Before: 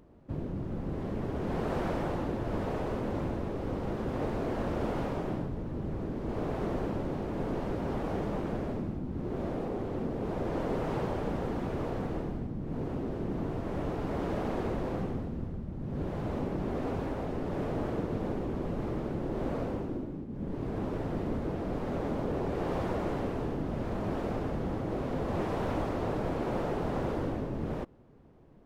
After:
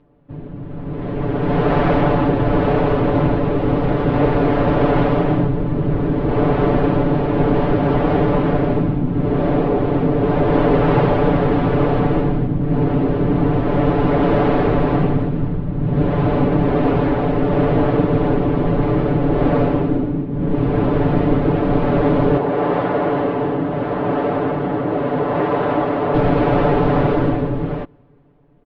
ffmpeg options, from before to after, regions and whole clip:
-filter_complex "[0:a]asettb=1/sr,asplit=3[s0][s1][s2];[s0]atrim=end=22.374[s3];[s1]atrim=start=22.37:end=26.14,asetpts=PTS-STARTPTS,afade=t=in:d=0.004:c=qsin,afade=t=out:st=3.766:d=0.004:c=qsin,highpass=f=340:p=1,highshelf=f=3200:g=-10,bandreject=f=2400:w=21[s4];[s2]atrim=start=26.136[s5];[s3][s4]acrossfade=d=0.004:c1=hsin:c2=qsin[s6];[s6][s5]acrossfade=d=0.004:c1=qsin:c2=hsin,lowpass=f=3700:w=0.5412,lowpass=f=3700:w=1.3066,aecho=1:1:6.9:0.95,dynaudnorm=f=140:g=17:m=5.96"

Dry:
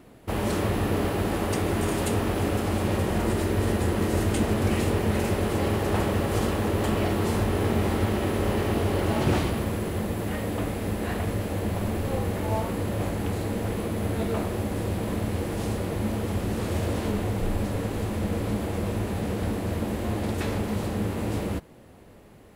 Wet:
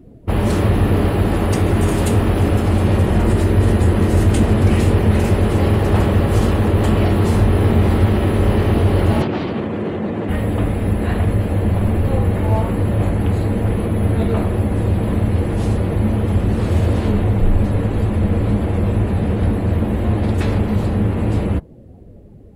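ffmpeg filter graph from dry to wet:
-filter_complex "[0:a]asettb=1/sr,asplit=3[s0][s1][s2];[s0]atrim=end=9.224[s3];[s1]atrim=start=9.22:end=10.29,asetpts=PTS-STARTPTS,afade=t=in:d=0.004:c=qsin,afade=t=out:st=1.066:d=0.004:c=qsin,lowshelf=f=340:g=5.5,acompressor=threshold=0.0891:ratio=4:attack=3.2:release=140:knee=1:detection=peak,highpass=240,lowpass=6600[s4];[s2]atrim=start=10.286[s5];[s3][s4]acrossfade=d=0.004:c1=hsin:c2=qsin[s6];[s6][s5]acrossfade=d=0.004:c1=qsin:c2=hsin,afftdn=nr=17:nf=-47,lowshelf=f=170:g=9.5,acontrast=55"

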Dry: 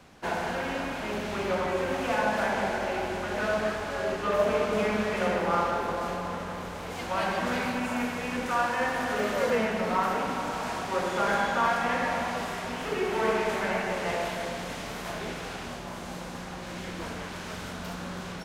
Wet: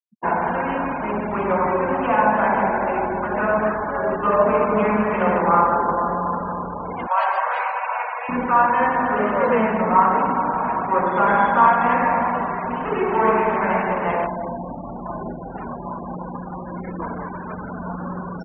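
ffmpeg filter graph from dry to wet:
-filter_complex "[0:a]asettb=1/sr,asplit=3[s0][s1][s2];[s0]atrim=end=7.074[s3];[s1]atrim=start=7.07:end=8.29,asetpts=PTS-STARTPTS,afade=t=in:d=0.004:c=qsin,afade=t=out:st=1.216:d=0.004:c=qsin,highpass=f=600:w=0.5412,highpass=f=600:w=1.3066,highshelf=f=6700:g=2.5[s4];[s2]atrim=start=8.286[s5];[s3][s4]acrossfade=d=0.004:c1=hsin:c2=qsin[s6];[s6][s5]acrossfade=d=0.004:c1=qsin:c2=hsin,asettb=1/sr,asplit=3[s7][s8][s9];[s7]atrim=end=14.264[s10];[s8]atrim=start=14.26:end=15.56,asetpts=PTS-STARTPTS,afade=t=in:d=0.004:c=qsin,afade=t=out:st=1.296:d=0.004:c=qsin,equalizer=f=3100:w=0.51:g=-8,bandreject=f=440:w=7.1,asplit=2[s11][s12];[s12]adelay=42,volume=0.2[s13];[s11][s13]amix=inputs=2:normalize=0,atrim=end_sample=57330[s14];[s9]atrim=start=15.556[s15];[s10][s14]acrossfade=d=0.004:c1=hsin:c2=qsin[s16];[s16][s15]acrossfade=d=0.004:c1=qsin:c2=hsin,equalizer=f=200:w=0.79:g=5,afftfilt=real='re*gte(hypot(re,im),0.0251)':imag='im*gte(hypot(re,im),0.0251)':win_size=1024:overlap=0.75,equalizer=f=100:t=o:w=0.67:g=-5,equalizer=f=1000:t=o:w=0.67:g=10,equalizer=f=4000:t=o:w=0.67:g=-9,volume=1.68"

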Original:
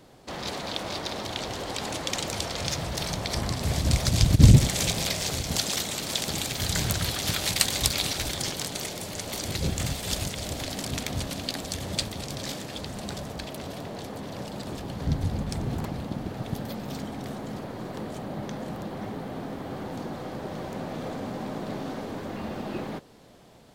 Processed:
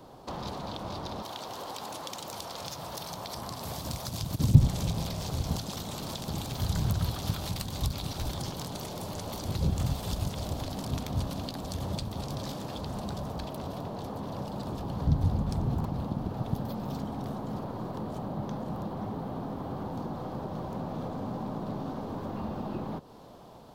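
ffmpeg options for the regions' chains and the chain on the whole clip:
-filter_complex "[0:a]asettb=1/sr,asplit=3[s0][s1][s2];[s0]atrim=end=1.224[s3];[s1]atrim=start=1.22:end=4.55,asetpts=PTS-STARTPTS,afade=t=in:d=0.004:c=qsin,afade=t=out:st=3.326:d=0.004:c=qsin,highpass=f=590:p=1,highshelf=f=9800:g=10[s4];[s2]atrim=start=4.546[s5];[s3][s4]acrossfade=d=0.004:c1=hsin:c2=qsin[s6];[s6][s5]acrossfade=d=0.004:c1=qsin:c2=hsin,equalizer=f=1000:t=o:w=1:g=8,equalizer=f=2000:t=o:w=1:g=-10,equalizer=f=8000:t=o:w=1:g=-7,acrossover=split=220[s7][s8];[s8]acompressor=threshold=0.0112:ratio=6[s9];[s7][s9]amix=inputs=2:normalize=0,volume=1.26"

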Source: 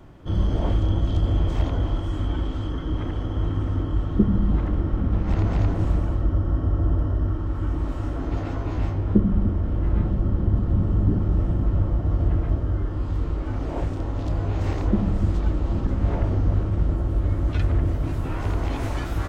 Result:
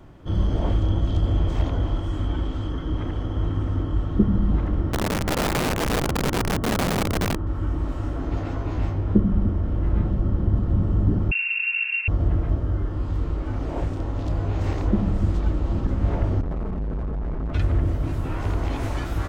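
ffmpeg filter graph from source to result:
-filter_complex "[0:a]asettb=1/sr,asplit=3[s0][s1][s2];[s0]atrim=end=4.924[s3];[s1]atrim=start=4.92:end=7.47,asetpts=PTS-STARTPTS,afade=t=in:d=0.004:c=qsin,afade=t=out:st=2.546:d=0.004:c=qsin,aemphasis=mode=reproduction:type=75kf,aeval=exprs='(mod(7.94*val(0)+1,2)-1)/7.94':c=same[s4];[s2]atrim=start=7.466[s5];[s3][s4]acrossfade=d=0.004:c1=hsin:c2=qsin[s6];[s6][s5]acrossfade=d=0.004:c1=qsin:c2=hsin,asettb=1/sr,asplit=3[s7][s8][s9];[s7]atrim=end=11.314[s10];[s8]atrim=start=11.31:end=12.08,asetpts=PTS-STARTPTS,afade=t=in:d=0.004:c=qsin,afade=t=out:st=0.766:d=0.004:c=qsin,acrossover=split=330|1600[s11][s12][s13];[s11]acompressor=threshold=0.0708:ratio=4[s14];[s12]acompressor=threshold=0.0141:ratio=4[s15];[s13]acompressor=threshold=0.00158:ratio=4[s16];[s14][s15][s16]amix=inputs=3:normalize=0,lowpass=f=2400:t=q:w=0.5098,lowpass=f=2400:t=q:w=0.6013,lowpass=f=2400:t=q:w=0.9,lowpass=f=2400:t=q:w=2.563,afreqshift=-2800[s17];[s9]atrim=start=12.076[s18];[s10][s17]acrossfade=d=0.004:c1=hsin:c2=qsin[s19];[s19][s18]acrossfade=d=0.004:c1=qsin:c2=hsin,asettb=1/sr,asplit=3[s20][s21][s22];[s20]atrim=end=16.414[s23];[s21]atrim=start=16.41:end=17.54,asetpts=PTS-STARTPTS,afade=t=in:d=0.004:c=qsin,afade=t=out:st=1.126:d=0.004:c=qsin,lowpass=1500,aecho=1:1:4.7:0.98,atrim=end_sample=49833,asoftclip=type=hard:threshold=0.0596[s24];[s22]atrim=start=17.536[s25];[s23][s24]acrossfade=d=0.004:c1=hsin:c2=qsin[s26];[s26][s25]acrossfade=d=0.004:c1=qsin:c2=hsin"

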